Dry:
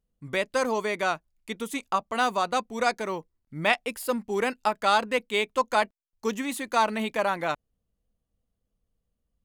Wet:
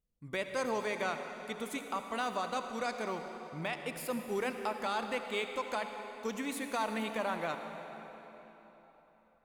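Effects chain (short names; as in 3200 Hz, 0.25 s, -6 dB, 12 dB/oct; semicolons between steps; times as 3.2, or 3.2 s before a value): limiter -18 dBFS, peak gain reduction 10.5 dB; on a send: reverb RT60 4.0 s, pre-delay 60 ms, DRR 6 dB; on the sum: gain -7 dB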